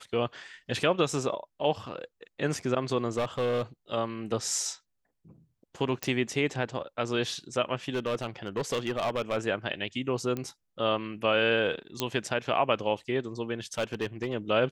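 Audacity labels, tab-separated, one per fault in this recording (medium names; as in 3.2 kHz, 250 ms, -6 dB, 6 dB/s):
3.170000	3.620000	clipped -23.5 dBFS
6.030000	6.030000	pop
7.940000	9.370000	clipped -24.5 dBFS
10.370000	10.370000	pop -20 dBFS
12.000000	12.000000	pop -11 dBFS
13.780000	14.350000	clipped -24 dBFS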